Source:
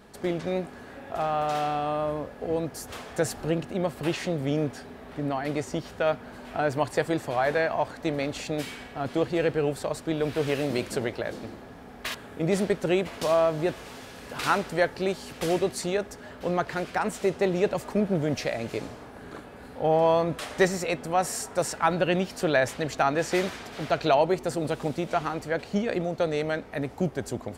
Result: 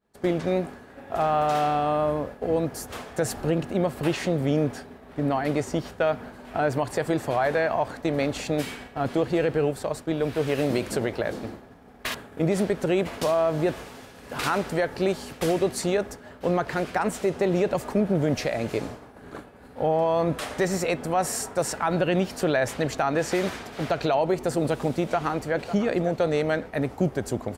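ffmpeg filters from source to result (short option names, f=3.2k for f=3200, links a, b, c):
-filter_complex "[0:a]asplit=2[a][b];[b]afade=t=in:st=25.01:d=0.01,afade=t=out:st=25.68:d=0.01,aecho=0:1:550|1100|1650|2200:0.188365|0.075346|0.0301384|0.0120554[c];[a][c]amix=inputs=2:normalize=0,asplit=3[d][e][f];[d]atrim=end=9.712[g];[e]atrim=start=9.708:end=10.582,asetpts=PTS-STARTPTS,volume=-3dB[h];[f]atrim=start=10.578[i];[g][h]acrossfade=d=0.004:c1=hsin:c2=hsin[j];[j][i]acrossfade=d=0.004:c1=hsin:c2=hsin,agate=range=-33dB:threshold=-37dB:ratio=3:detection=peak,equalizer=f=4.1k:w=0.51:g=-3,alimiter=limit=-18.5dB:level=0:latency=1:release=79,volume=4.5dB"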